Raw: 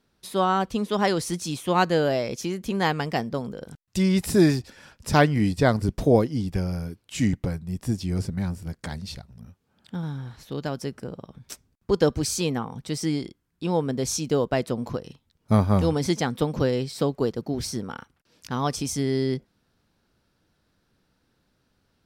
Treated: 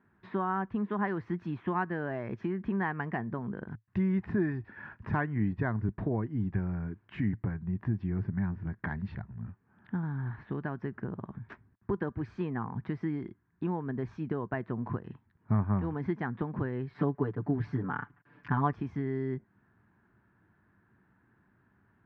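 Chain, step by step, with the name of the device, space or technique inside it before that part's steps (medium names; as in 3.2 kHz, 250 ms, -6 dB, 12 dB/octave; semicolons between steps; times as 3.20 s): bass amplifier (compression 3:1, threshold -34 dBFS, peak gain reduction 16 dB; cabinet simulation 62–2000 Hz, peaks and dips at 110 Hz +8 dB, 200 Hz +5 dB, 360 Hz +4 dB, 520 Hz -10 dB, 1 kHz +6 dB, 1.7 kHz +9 dB); 16.94–18.73 s: comb 6.9 ms, depth 99%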